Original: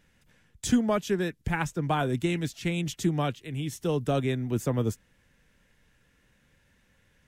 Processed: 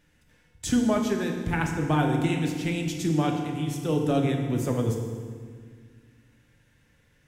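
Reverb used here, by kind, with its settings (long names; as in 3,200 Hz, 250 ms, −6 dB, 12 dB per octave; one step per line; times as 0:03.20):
feedback delay network reverb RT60 1.8 s, low-frequency decay 1.45×, high-frequency decay 0.8×, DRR 1.5 dB
level −1 dB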